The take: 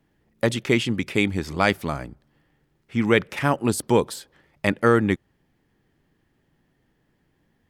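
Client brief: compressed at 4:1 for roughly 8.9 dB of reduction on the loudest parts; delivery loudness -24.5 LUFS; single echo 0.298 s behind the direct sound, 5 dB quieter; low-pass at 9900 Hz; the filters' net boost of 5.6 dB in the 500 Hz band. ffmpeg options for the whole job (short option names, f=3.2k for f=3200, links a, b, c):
-af "lowpass=9.9k,equalizer=f=500:t=o:g=6.5,acompressor=threshold=-19dB:ratio=4,aecho=1:1:298:0.562,volume=0.5dB"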